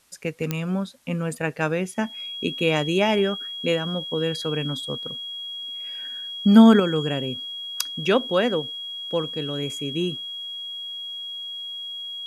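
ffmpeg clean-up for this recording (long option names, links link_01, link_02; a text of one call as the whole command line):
ffmpeg -i in.wav -af "adeclick=threshold=4,bandreject=frequency=3300:width=30,agate=range=-21dB:threshold=-26dB" out.wav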